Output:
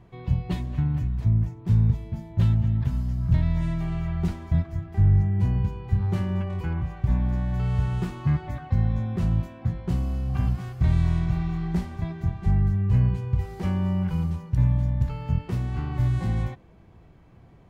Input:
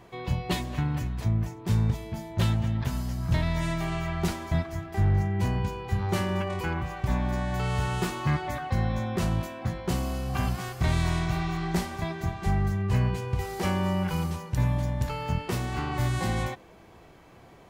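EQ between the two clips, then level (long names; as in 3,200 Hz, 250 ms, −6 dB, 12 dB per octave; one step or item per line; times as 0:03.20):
bass and treble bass +13 dB, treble −2 dB
high-shelf EQ 4,800 Hz −6 dB
−7.5 dB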